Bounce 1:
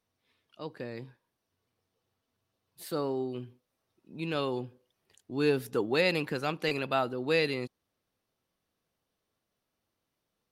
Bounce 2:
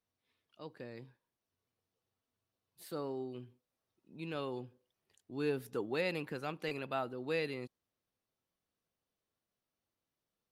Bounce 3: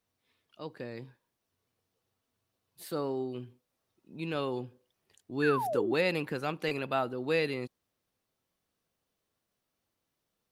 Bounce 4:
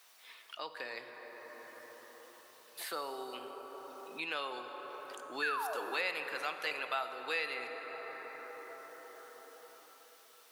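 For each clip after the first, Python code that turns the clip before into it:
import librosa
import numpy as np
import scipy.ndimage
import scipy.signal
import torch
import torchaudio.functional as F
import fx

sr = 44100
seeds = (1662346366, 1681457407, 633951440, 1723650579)

y1 = fx.dynamic_eq(x, sr, hz=5100.0, q=0.95, threshold_db=-46.0, ratio=4.0, max_db=-5)
y1 = y1 * 10.0 ** (-8.0 / 20.0)
y2 = fx.spec_paint(y1, sr, seeds[0], shape='fall', start_s=5.42, length_s=0.51, low_hz=300.0, high_hz=1800.0, level_db=-39.0)
y2 = y2 * 10.0 ** (6.5 / 20.0)
y3 = scipy.signal.sosfilt(scipy.signal.butter(2, 1000.0, 'highpass', fs=sr, output='sos'), y2)
y3 = fx.rev_plate(y3, sr, seeds[1], rt60_s=4.1, hf_ratio=0.4, predelay_ms=0, drr_db=7.0)
y3 = fx.band_squash(y3, sr, depth_pct=70)
y3 = y3 * 10.0 ** (2.0 / 20.0)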